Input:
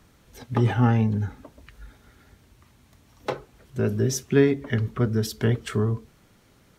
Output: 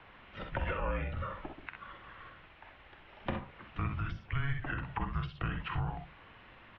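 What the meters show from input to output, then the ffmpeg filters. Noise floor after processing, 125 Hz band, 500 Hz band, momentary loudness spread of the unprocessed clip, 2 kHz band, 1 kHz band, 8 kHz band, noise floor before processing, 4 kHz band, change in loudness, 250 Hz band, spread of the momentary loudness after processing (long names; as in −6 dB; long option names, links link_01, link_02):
−57 dBFS, −13.5 dB, −17.5 dB, 13 LU, −5.0 dB, −5.0 dB, below −40 dB, −58 dBFS, −10.5 dB, −14.0 dB, −18.0 dB, 19 LU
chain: -filter_complex "[0:a]tiltshelf=frequency=820:gain=-5.5,alimiter=limit=-20.5dB:level=0:latency=1:release=109,aecho=1:1:47|63:0.355|0.398,acrossover=split=400|1100[link_01][link_02][link_03];[link_01]acompressor=threshold=-35dB:ratio=4[link_04];[link_02]acompressor=threshold=-45dB:ratio=4[link_05];[link_03]acompressor=threshold=-44dB:ratio=4[link_06];[link_04][link_05][link_06]amix=inputs=3:normalize=0,highpass=frequency=210:width_type=q:width=0.5412,highpass=frequency=210:width_type=q:width=1.307,lowpass=frequency=3200:width_type=q:width=0.5176,lowpass=frequency=3200:width_type=q:width=0.7071,lowpass=frequency=3200:width_type=q:width=1.932,afreqshift=-290,volume=5dB"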